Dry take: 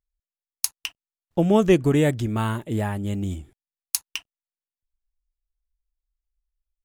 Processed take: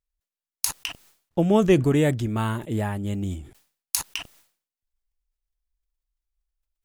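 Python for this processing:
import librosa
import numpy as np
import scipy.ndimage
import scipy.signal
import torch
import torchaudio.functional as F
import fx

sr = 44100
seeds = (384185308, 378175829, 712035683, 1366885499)

y = fx.sustainer(x, sr, db_per_s=130.0)
y = F.gain(torch.from_numpy(y), -1.0).numpy()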